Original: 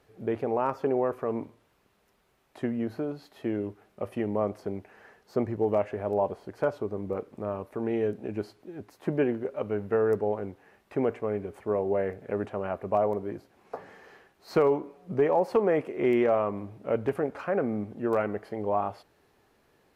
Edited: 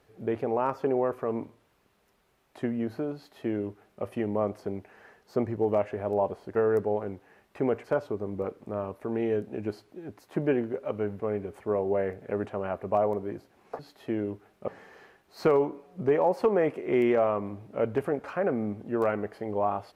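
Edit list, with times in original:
0:03.15–0:04.04: duplicate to 0:13.79
0:09.91–0:11.20: move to 0:06.55

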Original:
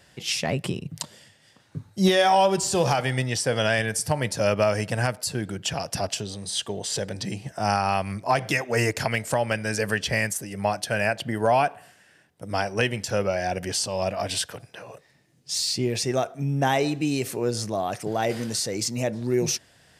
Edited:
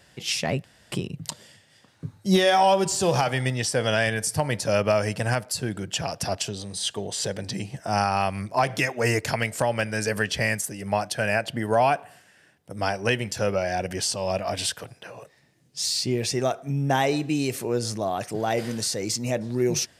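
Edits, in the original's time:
0:00.64: splice in room tone 0.28 s

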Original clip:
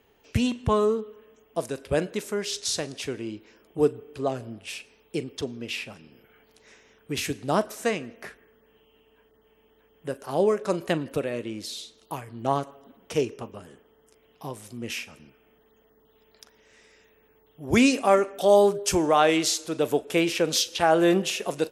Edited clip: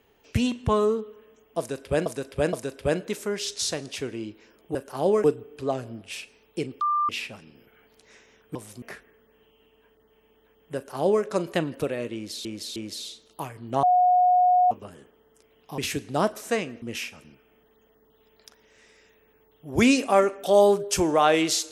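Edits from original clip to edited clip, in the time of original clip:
0:01.59–0:02.06: repeat, 3 plays
0:05.38–0:05.66: beep over 1,190 Hz −20.5 dBFS
0:07.12–0:08.16: swap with 0:14.50–0:14.77
0:10.09–0:10.58: duplicate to 0:03.81
0:11.48–0:11.79: repeat, 3 plays
0:12.55–0:13.43: beep over 725 Hz −15.5 dBFS

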